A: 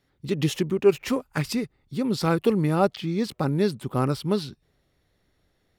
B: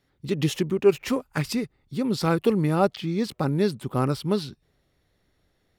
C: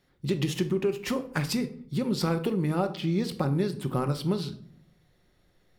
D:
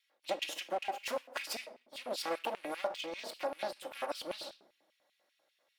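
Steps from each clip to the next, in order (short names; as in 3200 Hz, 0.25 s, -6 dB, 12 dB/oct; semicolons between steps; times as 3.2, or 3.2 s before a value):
nothing audible
compressor, threshold -26 dBFS, peak gain reduction 13 dB; shoebox room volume 820 m³, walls furnished, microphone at 0.94 m; gain +1.5 dB
minimum comb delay 3.6 ms; LFO high-pass square 5.1 Hz 640–2600 Hz; gain -6 dB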